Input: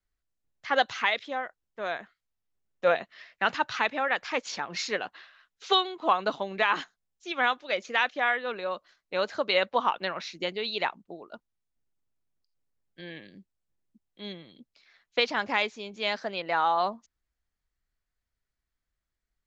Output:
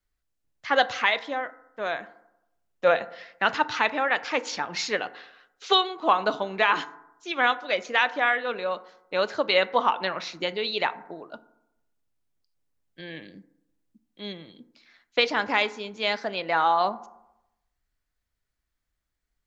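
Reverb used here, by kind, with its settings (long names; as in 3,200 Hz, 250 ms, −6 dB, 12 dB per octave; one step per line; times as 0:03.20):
feedback delay network reverb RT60 0.86 s, low-frequency decay 1×, high-frequency decay 0.35×, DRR 13 dB
level +3 dB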